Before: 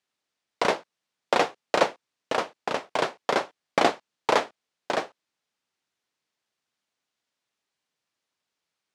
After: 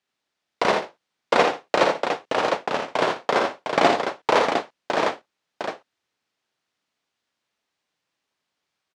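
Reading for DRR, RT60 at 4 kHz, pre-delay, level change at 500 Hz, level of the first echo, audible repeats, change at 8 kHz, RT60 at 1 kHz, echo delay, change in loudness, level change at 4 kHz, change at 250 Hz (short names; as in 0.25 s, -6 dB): none, none, none, +5.0 dB, -5.5 dB, 3, +1.5 dB, none, 55 ms, +4.0 dB, +3.5 dB, +5.0 dB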